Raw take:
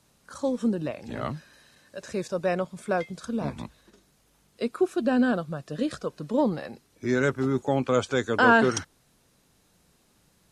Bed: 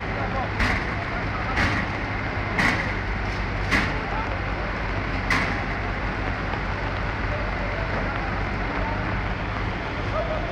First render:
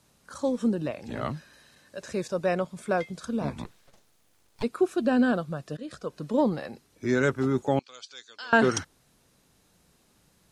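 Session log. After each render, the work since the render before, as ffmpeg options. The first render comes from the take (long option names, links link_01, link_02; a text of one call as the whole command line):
ffmpeg -i in.wav -filter_complex "[0:a]asplit=3[link_01][link_02][link_03];[link_01]afade=type=out:start_time=3.64:duration=0.02[link_04];[link_02]aeval=exprs='abs(val(0))':channel_layout=same,afade=type=in:start_time=3.64:duration=0.02,afade=type=out:start_time=4.62:duration=0.02[link_05];[link_03]afade=type=in:start_time=4.62:duration=0.02[link_06];[link_04][link_05][link_06]amix=inputs=3:normalize=0,asettb=1/sr,asplit=3[link_07][link_08][link_09];[link_07]atrim=end=7.794[link_10];[link_08]atrim=start=7.79:end=8.53,asetpts=PTS-STARTPTS,afade=type=in:duration=0.004:curve=qsin,afade=type=out:start_time=0.736:duration=0.004:curve=qsin,bandpass=frequency=4600:width_type=q:width=3.4[link_11];[link_09]atrim=start=8.526[link_12];[link_10][link_11]acrossfade=duration=0.004:curve1=hsin:curve2=qsin[link_13];[link_13][link_12]acrossfade=duration=0.004:curve1=qsin:curve2=hsin,asplit=2[link_14][link_15];[link_14]atrim=end=5.77,asetpts=PTS-STARTPTS,afade=type=out:start_time=5.766:duration=0.004:curve=hsin:silence=0.125893[link_16];[link_15]atrim=start=5.77,asetpts=PTS-STARTPTS,afade=type=in:duration=0.43:silence=0.125893[link_17];[link_16][link_17]concat=n=2:v=0:a=1" out.wav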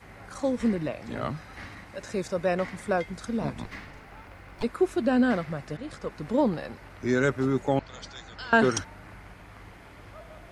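ffmpeg -i in.wav -i bed.wav -filter_complex "[1:a]volume=-20.5dB[link_01];[0:a][link_01]amix=inputs=2:normalize=0" out.wav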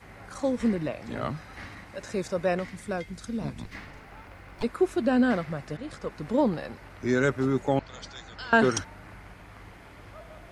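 ffmpeg -i in.wav -filter_complex "[0:a]asettb=1/sr,asplit=3[link_01][link_02][link_03];[link_01]atrim=end=2.594[link_04];[link_02]atrim=start=2.59:end=3.75,asetpts=PTS-STARTPTS,afade=type=in:duration=0.004:curve=qsin,afade=type=out:start_time=1.156:duration=0.004:curve=qsin,equalizer=frequency=850:width=0.46:gain=-7.5[link_05];[link_03]atrim=start=3.746[link_06];[link_04][link_05]acrossfade=duration=0.004:curve1=hsin:curve2=qsin[link_07];[link_07][link_06]acrossfade=duration=0.004:curve1=qsin:curve2=hsin" out.wav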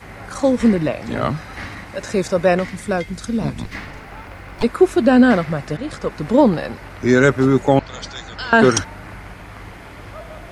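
ffmpeg -i in.wav -af "alimiter=level_in=11dB:limit=-1dB:release=50:level=0:latency=1" out.wav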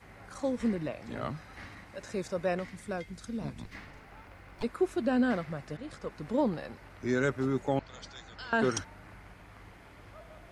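ffmpeg -i in.wav -af "volume=-15.5dB" out.wav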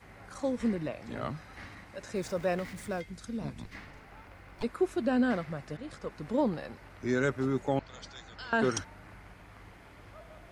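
ffmpeg -i in.wav -filter_complex "[0:a]asettb=1/sr,asplit=3[link_01][link_02][link_03];[link_01]atrim=end=2.154[link_04];[link_02]atrim=start=2.15:end=3.01,asetpts=PTS-STARTPTS,afade=type=in:duration=0.004:curve=qsin,afade=type=out:start_time=0.856:duration=0.004:curve=qsin,aeval=exprs='val(0)+0.5*0.00501*sgn(val(0))':channel_layout=same[link_05];[link_03]atrim=start=3.006[link_06];[link_04][link_05]acrossfade=duration=0.004:curve1=hsin:curve2=qsin[link_07];[link_07][link_06]acrossfade=duration=0.004:curve1=qsin:curve2=hsin" out.wav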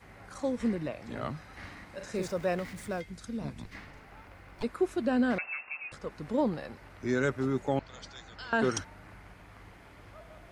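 ffmpeg -i in.wav -filter_complex "[0:a]asettb=1/sr,asplit=3[link_01][link_02][link_03];[link_01]atrim=end=1.594[link_04];[link_02]atrim=start=1.59:end=2.28,asetpts=PTS-STARTPTS,afade=type=in:duration=0.004:curve=qsin,afade=type=out:start_time=0.686:duration=0.004:curve=qsin,asplit=2[link_05][link_06];[link_06]adelay=43,volume=-5dB[link_07];[link_05][link_07]amix=inputs=2:normalize=0,atrim=end_sample=30429[link_08];[link_03]atrim=start=2.276[link_09];[link_04][link_08]acrossfade=duration=0.004:curve1=hsin:curve2=qsin[link_10];[link_10][link_09]acrossfade=duration=0.004:curve1=qsin:curve2=hsin,asettb=1/sr,asplit=3[link_11][link_12][link_13];[link_11]atrim=end=5.384[link_14];[link_12]atrim=start=5.38:end=5.92,asetpts=PTS-STARTPTS,afade=type=in:duration=0.004:curve=qsin,afade=type=out:start_time=0.536:duration=0.004:curve=qsin,lowpass=frequency=2400:width_type=q:width=0.5098,lowpass=frequency=2400:width_type=q:width=0.6013,lowpass=frequency=2400:width_type=q:width=0.9,lowpass=frequency=2400:width_type=q:width=2.563,afreqshift=-2800[link_15];[link_13]atrim=start=5.916[link_16];[link_14][link_15]acrossfade=duration=0.004:curve1=hsin:curve2=qsin[link_17];[link_17][link_16]acrossfade=duration=0.004:curve1=qsin:curve2=hsin" out.wav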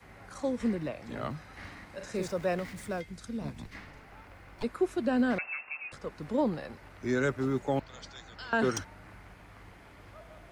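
ffmpeg -i in.wav -filter_complex "[0:a]acrossover=split=100|440|1900[link_01][link_02][link_03][link_04];[link_01]acrusher=samples=35:mix=1:aa=0.000001:lfo=1:lforange=35:lforate=1.2[link_05];[link_04]volume=27.5dB,asoftclip=hard,volume=-27.5dB[link_06];[link_05][link_02][link_03][link_06]amix=inputs=4:normalize=0" out.wav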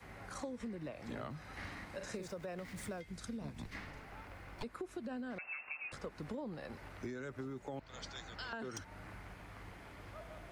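ffmpeg -i in.wav -af "alimiter=limit=-24dB:level=0:latency=1:release=65,acompressor=threshold=-40dB:ratio=12" out.wav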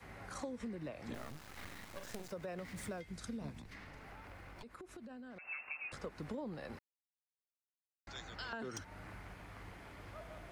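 ffmpeg -i in.wav -filter_complex "[0:a]asettb=1/sr,asplit=3[link_01][link_02][link_03];[link_01]atrim=end=1.144[link_04];[link_02]atrim=start=1.14:end=2.31,asetpts=PTS-STARTPTS,afade=type=in:duration=0.004:curve=qsin,afade=type=out:start_time=1.166:duration=0.004:curve=qsin,acrusher=bits=6:dc=4:mix=0:aa=0.000001[link_05];[link_03]atrim=start=2.306[link_06];[link_04][link_05]acrossfade=duration=0.004:curve1=hsin:curve2=qsin[link_07];[link_07][link_06]acrossfade=duration=0.004:curve1=qsin:curve2=hsin,asettb=1/sr,asplit=3[link_08][link_09][link_10];[link_08]atrim=end=3.574[link_11];[link_09]atrim=start=3.57:end=5.48,asetpts=PTS-STARTPTS,afade=type=in:duration=0.004:curve=qsin,afade=type=out:start_time=1.906:duration=0.004:curve=qsin,acompressor=threshold=-48dB:ratio=6:attack=3.2:release=140:knee=1:detection=peak[link_12];[link_10]atrim=start=5.476[link_13];[link_11][link_12]acrossfade=duration=0.004:curve1=hsin:curve2=qsin[link_14];[link_14][link_13]acrossfade=duration=0.004:curve1=qsin:curve2=hsin,asplit=3[link_15][link_16][link_17];[link_15]atrim=end=6.79,asetpts=PTS-STARTPTS,afade=type=out:start_time=6.786:duration=0.004:curve=hsin[link_18];[link_16]atrim=start=6.79:end=8.07,asetpts=PTS-STARTPTS,volume=0[link_19];[link_17]atrim=start=8.07,asetpts=PTS-STARTPTS,afade=type=in:duration=0.004:curve=hsin[link_20];[link_18][link_19][link_20]concat=n=3:v=0:a=1" out.wav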